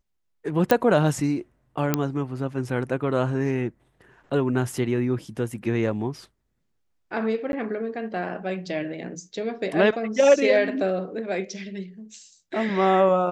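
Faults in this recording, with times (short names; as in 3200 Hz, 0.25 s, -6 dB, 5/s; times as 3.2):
0.71 pop -5 dBFS
1.94 pop -6 dBFS
7.52–7.53 gap 11 ms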